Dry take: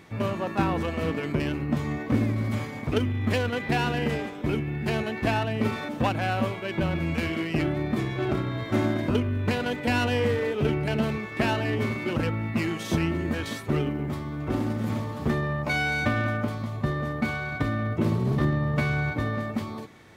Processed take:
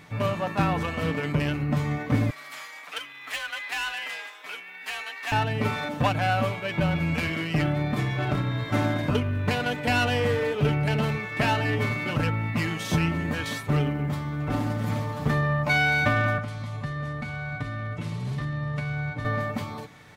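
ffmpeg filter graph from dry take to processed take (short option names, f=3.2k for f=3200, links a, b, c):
-filter_complex "[0:a]asettb=1/sr,asplit=3[a][b][c];[a]atrim=end=2.304[d];[b]atrim=start=2.3:end=5.32,asetpts=PTS-STARTPTS,afade=t=in:d=0.004:c=qsin,afade=t=out:st=3.016:d=0.004:c=qsin,highpass=1.3k,asoftclip=type=hard:threshold=-27dB,afreqshift=38[e];[c]atrim=start=5.316[f];[d][e]acrossfade=d=0.004:c1=hsin:c2=qsin[g];[g][f]acrossfade=d=0.004:c1=qsin:c2=hsin,asettb=1/sr,asplit=3[h][i][j];[h]atrim=end=16.384[k];[i]atrim=start=16.38:end=19.25,asetpts=PTS-STARTPTS,afade=t=in:d=0.004:c=qsin,afade=t=out:st=2.866:d=0.004:c=qsin,acrossover=split=170|1700[l][m][n];[l]acompressor=threshold=-35dB:ratio=4[o];[m]acompressor=threshold=-40dB:ratio=4[p];[n]acompressor=threshold=-46dB:ratio=4[q];[o][p][q]amix=inputs=3:normalize=0,lowpass=f=11k:w=0.5412,lowpass=f=11k:w=1.3066[r];[j]atrim=start=19.246[s];[k][r]acrossfade=d=0.004:c1=hsin:c2=qsin[t];[t][s]acrossfade=d=0.004:c1=qsin:c2=hsin,equalizer=f=350:t=o:w=0.74:g=-8,aecho=1:1:6.8:0.42,volume=2dB"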